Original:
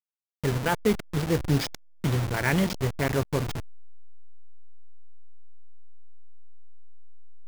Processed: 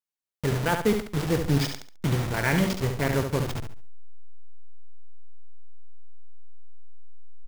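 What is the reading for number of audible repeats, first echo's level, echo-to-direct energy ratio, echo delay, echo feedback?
3, −6.5 dB, −6.0 dB, 70 ms, 29%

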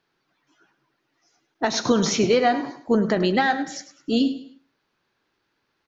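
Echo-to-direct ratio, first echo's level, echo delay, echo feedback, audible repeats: −13.0 dB, −13.5 dB, 103 ms, 33%, 3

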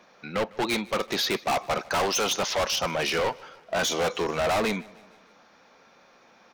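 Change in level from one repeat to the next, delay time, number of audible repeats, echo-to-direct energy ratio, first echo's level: −5.5 dB, 153 ms, 3, −22.0 dB, −23.5 dB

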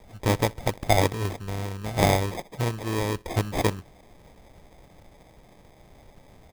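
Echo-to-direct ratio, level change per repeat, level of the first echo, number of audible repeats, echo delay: −23.5 dB, −9.5 dB, −24.0 dB, 2, 62 ms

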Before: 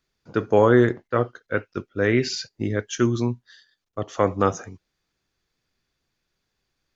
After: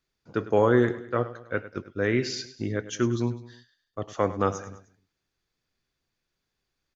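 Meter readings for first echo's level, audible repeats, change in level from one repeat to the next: −15.0 dB, 3, −6.0 dB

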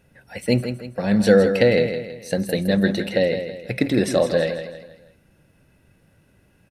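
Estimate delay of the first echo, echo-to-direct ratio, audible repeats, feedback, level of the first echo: 162 ms, −8.0 dB, 4, 40%, −9.0 dB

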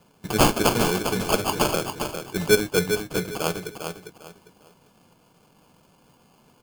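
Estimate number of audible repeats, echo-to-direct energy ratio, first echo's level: 3, −6.5 dB, −7.0 dB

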